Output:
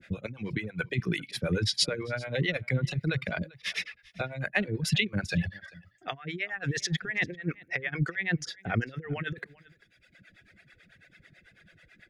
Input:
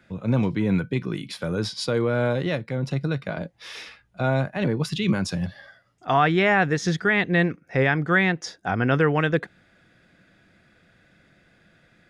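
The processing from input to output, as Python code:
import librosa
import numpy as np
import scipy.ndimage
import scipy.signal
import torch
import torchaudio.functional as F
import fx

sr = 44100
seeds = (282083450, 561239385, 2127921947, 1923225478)

p1 = fx.over_compress(x, sr, threshold_db=-25.0, ratio=-0.5)
p2 = fx.graphic_eq(p1, sr, hz=(250, 1000, 2000), db=(-5, -11, 8))
p3 = fx.dereverb_blind(p2, sr, rt60_s=1.5)
p4 = fx.harmonic_tremolo(p3, sr, hz=9.1, depth_pct=100, crossover_hz=410.0)
p5 = p4 + fx.echo_single(p4, sr, ms=393, db=-23.0, dry=0)
y = p5 * 10.0 ** (3.5 / 20.0)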